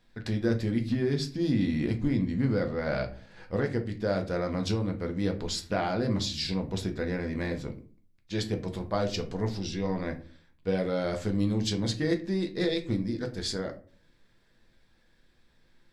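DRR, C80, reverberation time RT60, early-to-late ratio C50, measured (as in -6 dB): 4.0 dB, 18.5 dB, 0.40 s, 13.5 dB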